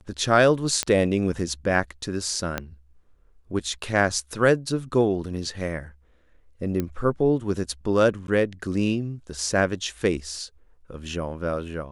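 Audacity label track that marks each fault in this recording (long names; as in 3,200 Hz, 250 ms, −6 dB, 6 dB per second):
0.830000	0.830000	click −8 dBFS
2.580000	2.580000	click −11 dBFS
6.800000	6.800000	click −14 dBFS
8.270000	8.280000	drop-out 11 ms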